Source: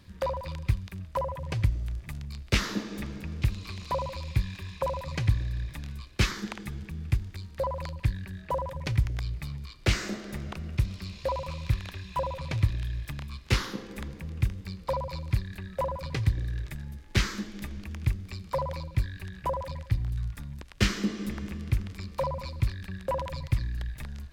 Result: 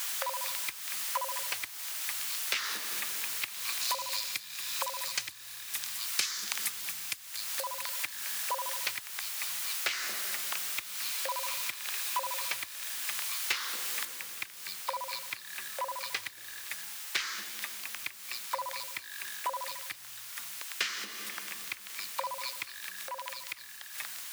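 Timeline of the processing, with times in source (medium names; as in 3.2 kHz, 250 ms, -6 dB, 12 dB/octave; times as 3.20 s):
3.81–7.83 s: tone controls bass +8 dB, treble +15 dB
14.05 s: noise floor step -42 dB -49 dB
22.77–23.98 s: compression, threshold -35 dBFS
whole clip: compression 6:1, threshold -30 dBFS; high-pass 1.2 kHz 12 dB/octave; trim +7 dB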